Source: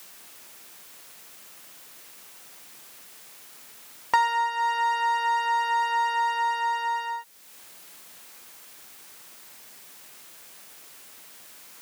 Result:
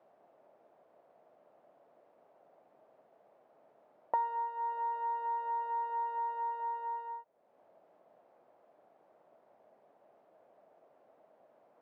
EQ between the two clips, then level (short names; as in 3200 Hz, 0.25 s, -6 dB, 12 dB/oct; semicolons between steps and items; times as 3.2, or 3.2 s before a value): synth low-pass 640 Hz, resonance Q 4; low shelf 100 Hz -9.5 dB; low shelf 330 Hz -4 dB; -8.0 dB